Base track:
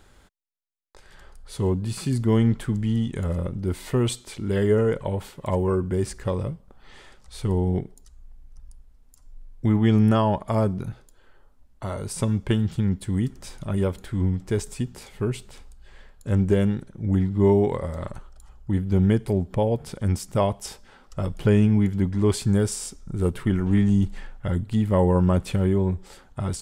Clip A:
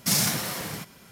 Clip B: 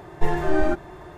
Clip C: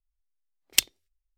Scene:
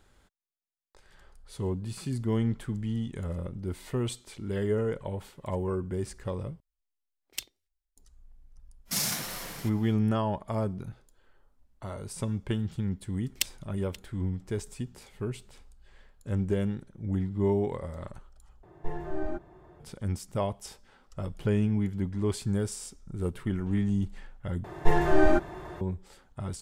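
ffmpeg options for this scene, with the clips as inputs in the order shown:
-filter_complex "[3:a]asplit=2[s0][s1];[2:a]asplit=2[s2][s3];[0:a]volume=0.398[s4];[s0]alimiter=limit=0.282:level=0:latency=1:release=22[s5];[1:a]lowshelf=f=400:g=-4.5[s6];[s1]asplit=2[s7][s8];[s8]adelay=530.6,volume=0.251,highshelf=f=4000:g=-11.9[s9];[s7][s9]amix=inputs=2:normalize=0[s10];[s2]tiltshelf=f=1300:g=5[s11];[s4]asplit=4[s12][s13][s14][s15];[s12]atrim=end=6.604[s16];[s5]atrim=end=1.37,asetpts=PTS-STARTPTS,volume=0.473[s17];[s13]atrim=start=7.966:end=18.634[s18];[s11]atrim=end=1.17,asetpts=PTS-STARTPTS,volume=0.158[s19];[s14]atrim=start=19.796:end=24.644[s20];[s3]atrim=end=1.17[s21];[s15]atrim=start=25.806[s22];[s6]atrim=end=1.11,asetpts=PTS-STARTPTS,volume=0.501,afade=t=in:d=0.05,afade=t=out:st=1.06:d=0.05,adelay=8850[s23];[s10]atrim=end=1.37,asetpts=PTS-STARTPTS,volume=0.376,afade=t=in:d=0.004:c=hsin,afade=t=out:st=1.366:d=0.004:c=hsin,adelay=12630[s24];[s16][s17]acrossfade=d=0.004:c1=hsin:c2=hsin[s25];[s25][s18]acrossfade=d=0.004:c1=hsin:c2=hsin[s26];[s26][s19]acrossfade=d=0.004:c1=hsin:c2=hsin[s27];[s27][s20]acrossfade=d=0.004:c1=hsin:c2=hsin[s28];[s28][s21]acrossfade=d=0.004:c1=hsin:c2=hsin[s29];[s29][s22]acrossfade=d=0.004:c1=hsin:c2=hsin[s30];[s30][s23][s24]amix=inputs=3:normalize=0"

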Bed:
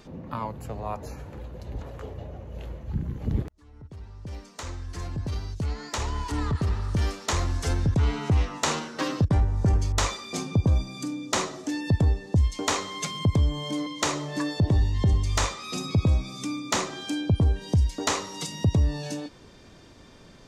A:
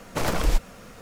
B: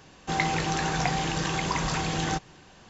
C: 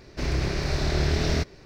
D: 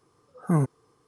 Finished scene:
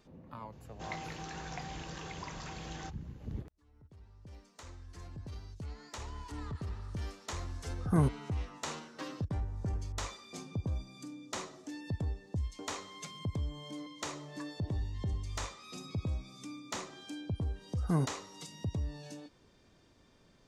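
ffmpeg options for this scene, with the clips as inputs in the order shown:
-filter_complex "[4:a]asplit=2[s0][s1];[0:a]volume=0.2[s2];[2:a]aresample=16000,aresample=44100,atrim=end=2.89,asetpts=PTS-STARTPTS,volume=0.158,afade=t=in:d=0.004:c=hsin,afade=t=out:st=2.886:d=0.004:c=hsin,adelay=520[s3];[s0]atrim=end=1.07,asetpts=PTS-STARTPTS,volume=0.596,afade=t=in:d=0.004:c=hsin,afade=t=out:st=1.066:d=0.004:c=hsin,adelay=7430[s4];[s1]atrim=end=1.07,asetpts=PTS-STARTPTS,volume=0.422,afade=t=in:d=0.004:c=hsin,afade=t=out:st=1.066:d=0.004:c=hsin,adelay=17400[s5];[s2][s3][s4][s5]amix=inputs=4:normalize=0"

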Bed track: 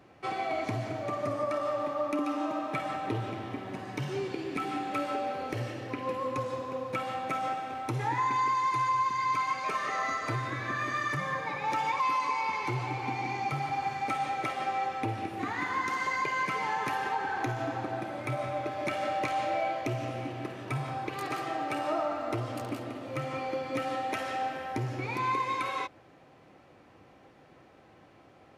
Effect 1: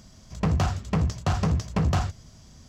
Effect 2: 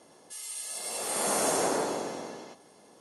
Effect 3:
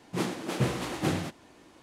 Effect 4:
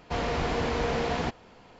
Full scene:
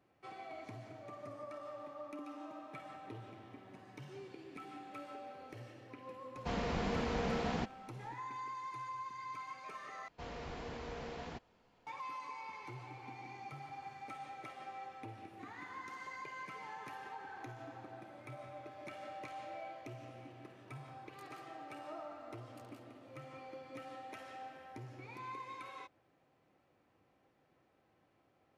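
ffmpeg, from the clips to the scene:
-filter_complex "[4:a]asplit=2[s0][s1];[0:a]volume=0.15[s2];[s0]equalizer=f=200:t=o:w=0.33:g=11.5[s3];[s2]asplit=2[s4][s5];[s4]atrim=end=10.084[s6];[s1]atrim=end=1.79,asetpts=PTS-STARTPTS,volume=0.141[s7];[s5]atrim=start=11.866[s8];[s3]atrim=end=1.79,asetpts=PTS-STARTPTS,volume=0.355,afade=t=in:d=0.004:c=hsin,afade=t=out:st=1.786:d=0.004:c=hsin,adelay=6350[s9];[s6][s7]acrossfade=d=0.004:c1=hsin:c2=hsin[s10];[s10][s8]acrossfade=d=0.004:c1=hsin:c2=hsin[s11];[s11][s9]amix=inputs=2:normalize=0"

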